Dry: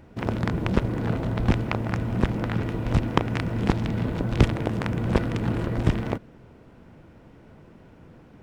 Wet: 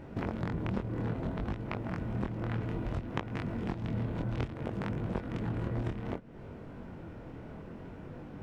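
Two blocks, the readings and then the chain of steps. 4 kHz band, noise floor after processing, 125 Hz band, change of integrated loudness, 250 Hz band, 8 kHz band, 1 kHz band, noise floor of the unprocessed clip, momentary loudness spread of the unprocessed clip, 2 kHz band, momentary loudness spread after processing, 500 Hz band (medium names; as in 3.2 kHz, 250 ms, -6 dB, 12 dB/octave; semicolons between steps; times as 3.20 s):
-14.0 dB, -47 dBFS, -10.0 dB, -11.0 dB, -9.5 dB, no reading, -10.0 dB, -51 dBFS, 5 LU, -11.0 dB, 12 LU, -9.5 dB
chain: treble shelf 3.3 kHz -8 dB; compression 8:1, threshold -36 dBFS, peak gain reduction 24 dB; chorus 0.61 Hz, delay 20 ms, depth 5.8 ms; trim +7.5 dB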